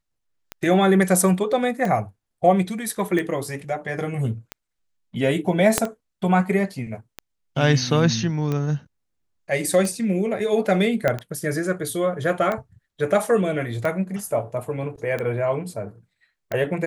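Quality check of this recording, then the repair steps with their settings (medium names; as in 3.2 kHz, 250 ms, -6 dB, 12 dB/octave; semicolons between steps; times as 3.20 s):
tick 45 rpm -14 dBFS
5.78 s: pop -2 dBFS
11.08 s: pop -8 dBFS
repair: de-click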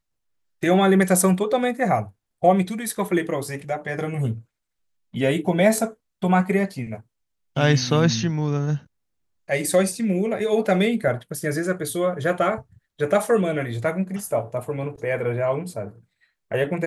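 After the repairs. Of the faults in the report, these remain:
5.78 s: pop
11.08 s: pop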